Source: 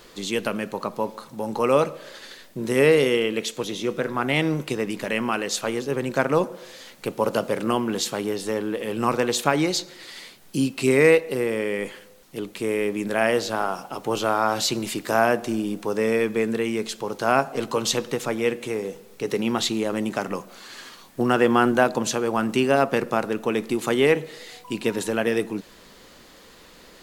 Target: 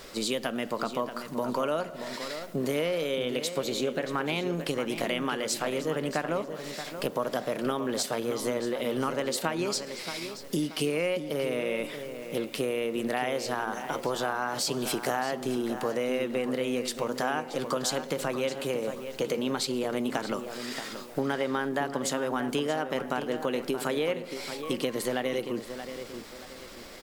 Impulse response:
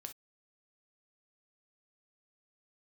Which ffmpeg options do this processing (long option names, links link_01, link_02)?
-filter_complex "[0:a]acompressor=threshold=-29dB:ratio=6,asetrate=49501,aresample=44100,atempo=0.890899,asplit=2[link_01][link_02];[link_02]adelay=629,lowpass=frequency=3900:poles=1,volume=-9.5dB,asplit=2[link_03][link_04];[link_04]adelay=629,lowpass=frequency=3900:poles=1,volume=0.36,asplit=2[link_05][link_06];[link_06]adelay=629,lowpass=frequency=3900:poles=1,volume=0.36,asplit=2[link_07][link_08];[link_08]adelay=629,lowpass=frequency=3900:poles=1,volume=0.36[link_09];[link_01][link_03][link_05][link_07][link_09]amix=inputs=5:normalize=0,volume=2.5dB"